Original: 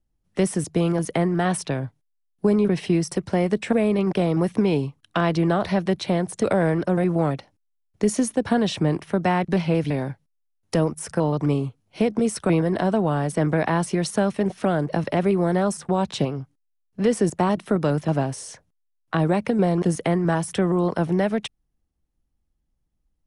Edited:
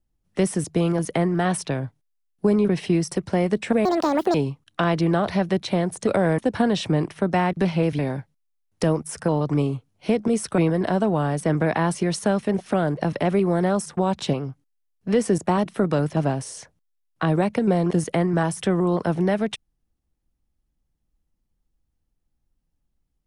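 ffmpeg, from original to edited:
-filter_complex "[0:a]asplit=4[a][b][c][d];[a]atrim=end=3.854[e];[b]atrim=start=3.85:end=4.71,asetpts=PTS-STARTPTS,asetrate=76734,aresample=44100[f];[c]atrim=start=4.706:end=6.752[g];[d]atrim=start=8.298[h];[e][f]acrossfade=d=0.004:c1=hsin:c2=hsin[i];[i][g]acrossfade=d=0.004:c1=hsin:c2=hsin[j];[j][h]acrossfade=d=0.004:c1=hsin:c2=hsin"

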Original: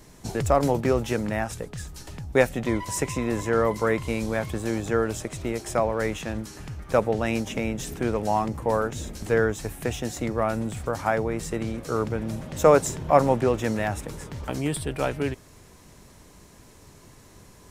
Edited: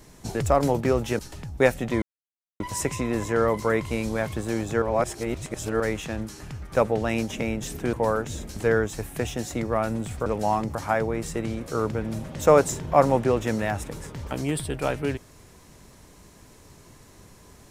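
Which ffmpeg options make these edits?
-filter_complex "[0:a]asplit=8[a][b][c][d][e][f][g][h];[a]atrim=end=1.192[i];[b]atrim=start=1.938:end=2.77,asetpts=PTS-STARTPTS,afade=t=out:st=0.828:d=0.004:c=hsin,apad=pad_dur=0.58[j];[c]atrim=start=2.77:end=4.992,asetpts=PTS-STARTPTS,afade=t=in:d=0.004:c=hsin[k];[d]atrim=start=4.988:end=5.972,asetpts=PTS-STARTPTS,areverse[l];[e]atrim=start=5.968:end=8.102[m];[f]atrim=start=8.588:end=10.922[n];[g]atrim=start=8.098:end=8.592[o];[h]atrim=start=10.918[p];[j][k]concat=n=2:v=0:a=1[q];[i][q]acrossfade=d=0.004:c1=hsin:c2=hsin[r];[r][l]acrossfade=d=0.004:c1=hsin:c2=hsin[s];[s][m]acrossfade=d=0.004:c1=hsin:c2=hsin[t];[t][n]acrossfade=d=0.004:c1=hsin:c2=hsin[u];[u][o]acrossfade=d=0.004:c1=hsin:c2=hsin[v];[v][p]acrossfade=d=0.004:c1=hsin:c2=hsin"

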